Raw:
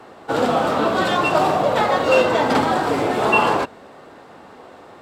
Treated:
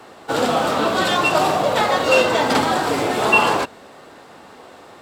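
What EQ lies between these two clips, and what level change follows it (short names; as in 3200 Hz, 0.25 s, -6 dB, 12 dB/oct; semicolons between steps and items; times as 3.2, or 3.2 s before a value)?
high shelf 2700 Hz +9 dB; -1.0 dB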